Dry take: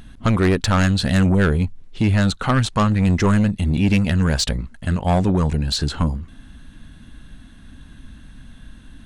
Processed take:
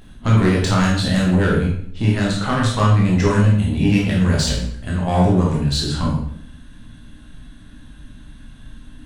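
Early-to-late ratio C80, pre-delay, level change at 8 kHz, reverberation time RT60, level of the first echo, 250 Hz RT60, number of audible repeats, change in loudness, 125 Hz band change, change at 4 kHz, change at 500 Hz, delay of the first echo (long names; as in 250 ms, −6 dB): 6.5 dB, 15 ms, +1.0 dB, 0.60 s, no echo audible, 0.80 s, no echo audible, +1.5 dB, +2.0 dB, +1.0 dB, +2.0 dB, no echo audible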